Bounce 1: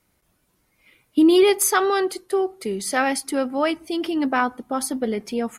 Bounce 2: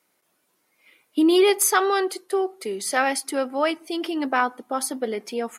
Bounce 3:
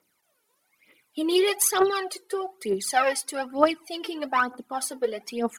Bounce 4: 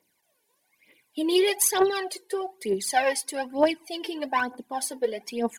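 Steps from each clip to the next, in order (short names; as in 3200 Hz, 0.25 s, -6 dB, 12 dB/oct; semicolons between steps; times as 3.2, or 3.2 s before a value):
HPF 330 Hz 12 dB/oct
phaser 1.1 Hz, delay 2.4 ms, feedback 74%; gain -5 dB
Butterworth band-stop 1300 Hz, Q 3.8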